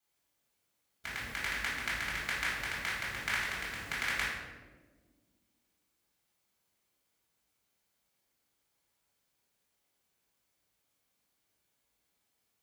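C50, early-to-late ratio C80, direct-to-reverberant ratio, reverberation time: 0.0 dB, 3.0 dB, -8.5 dB, 1.5 s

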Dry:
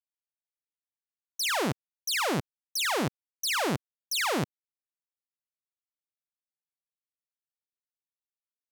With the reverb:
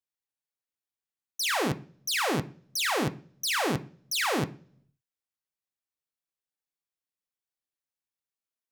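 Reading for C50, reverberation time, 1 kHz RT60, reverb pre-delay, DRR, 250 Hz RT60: 18.5 dB, 0.45 s, 0.40 s, 3 ms, 7.0 dB, 0.70 s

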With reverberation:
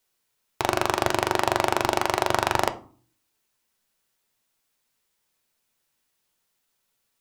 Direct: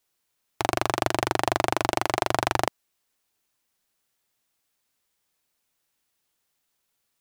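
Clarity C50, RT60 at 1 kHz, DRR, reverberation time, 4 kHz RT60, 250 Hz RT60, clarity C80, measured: 17.0 dB, 0.45 s, 8.5 dB, 0.45 s, 0.25 s, 0.65 s, 22.0 dB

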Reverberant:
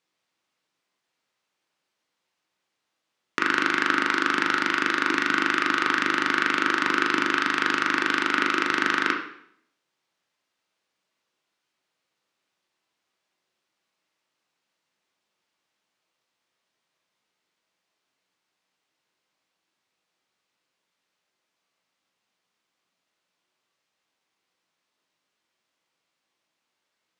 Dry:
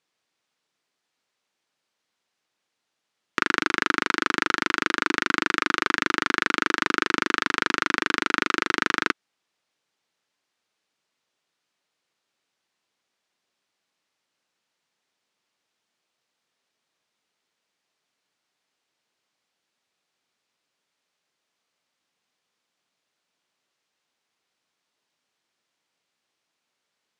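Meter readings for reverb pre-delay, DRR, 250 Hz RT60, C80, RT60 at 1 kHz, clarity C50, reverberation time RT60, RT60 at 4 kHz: 7 ms, 1.0 dB, 0.70 s, 9.5 dB, 0.65 s, 6.0 dB, 0.65 s, 0.60 s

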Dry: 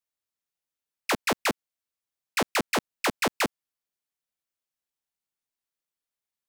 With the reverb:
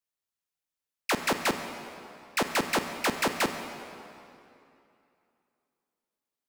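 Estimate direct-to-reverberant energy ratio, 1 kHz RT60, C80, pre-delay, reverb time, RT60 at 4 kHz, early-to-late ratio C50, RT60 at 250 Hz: 7.0 dB, 2.8 s, 8.0 dB, 27 ms, 2.8 s, 2.1 s, 7.5 dB, 2.8 s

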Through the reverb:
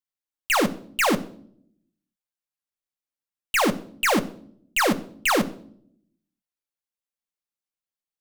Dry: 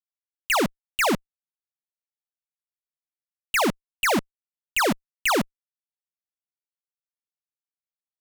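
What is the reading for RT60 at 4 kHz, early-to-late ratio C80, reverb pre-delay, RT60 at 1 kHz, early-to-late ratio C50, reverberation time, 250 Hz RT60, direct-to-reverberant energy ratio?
0.50 s, 20.0 dB, 4 ms, 0.50 s, 17.0 dB, 0.60 s, 1.0 s, 6.5 dB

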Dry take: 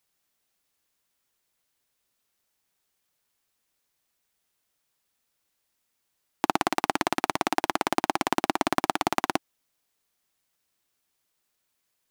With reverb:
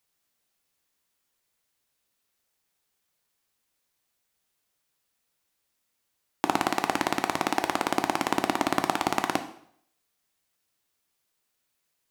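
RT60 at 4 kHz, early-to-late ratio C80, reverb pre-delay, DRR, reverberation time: 0.60 s, 14.5 dB, 5 ms, 7.0 dB, 0.65 s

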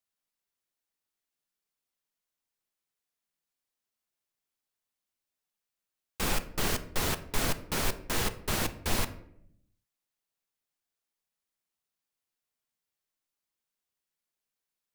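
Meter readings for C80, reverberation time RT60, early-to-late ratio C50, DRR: 17.5 dB, 0.75 s, 14.0 dB, 10.0 dB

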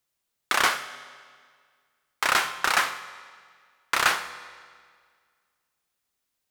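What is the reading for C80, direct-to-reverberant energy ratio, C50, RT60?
14.5 dB, 11.5 dB, 13.0 dB, 1.9 s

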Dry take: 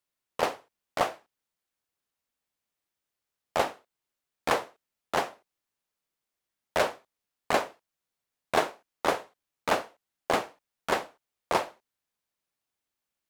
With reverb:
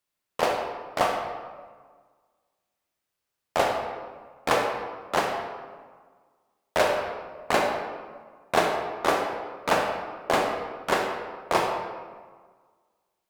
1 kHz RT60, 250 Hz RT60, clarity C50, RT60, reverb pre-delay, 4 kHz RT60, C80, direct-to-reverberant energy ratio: 1.6 s, 1.7 s, 3.0 dB, 1.6 s, 24 ms, 0.95 s, 5.0 dB, 1.0 dB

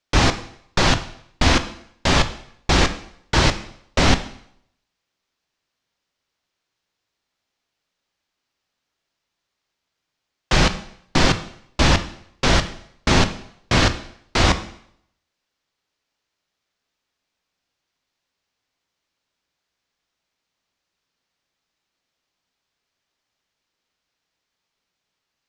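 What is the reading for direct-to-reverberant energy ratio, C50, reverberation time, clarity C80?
9.5 dB, 13.0 dB, 0.70 s, 16.5 dB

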